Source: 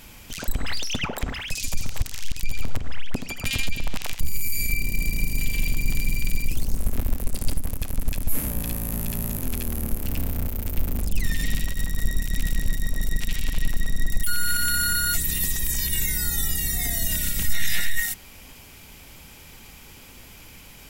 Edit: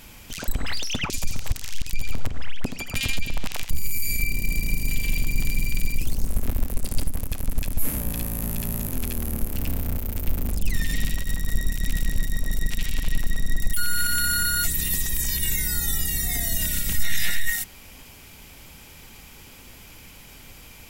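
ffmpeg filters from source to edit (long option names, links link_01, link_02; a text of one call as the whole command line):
ffmpeg -i in.wav -filter_complex "[0:a]asplit=2[link_01][link_02];[link_01]atrim=end=1.102[link_03];[link_02]atrim=start=1.598[link_04];[link_03][link_04]acrossfade=duration=0.004:curve1=hsin:curve2=hsin" out.wav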